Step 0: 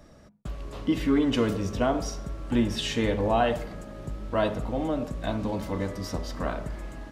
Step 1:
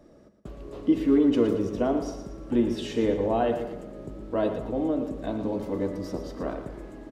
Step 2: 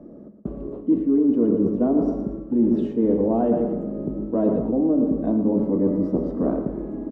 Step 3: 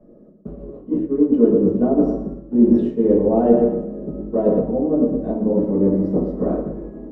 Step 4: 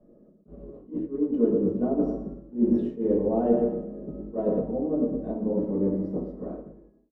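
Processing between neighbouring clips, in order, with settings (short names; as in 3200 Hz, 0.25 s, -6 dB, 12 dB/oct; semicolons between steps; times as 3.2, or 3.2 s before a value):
bell 370 Hz +14 dB 1.7 oct; on a send: feedback echo 0.116 s, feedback 40%, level -9.5 dB; on the sum: gain -9 dB
EQ curve 110 Hz 0 dB, 210 Hz +13 dB, 1200 Hz -3 dB, 1900 Hz -12 dB, 5100 Hz -23 dB; reverse; compressor 6:1, threshold -20 dBFS, peak gain reduction 12.5 dB; reverse; gain +3.5 dB
reverb RT60 0.30 s, pre-delay 3 ms, DRR -7 dB; upward expander 1.5:1, over -27 dBFS; gain -2.5 dB
ending faded out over 1.31 s; attack slew limiter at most 240 dB/s; gain -8 dB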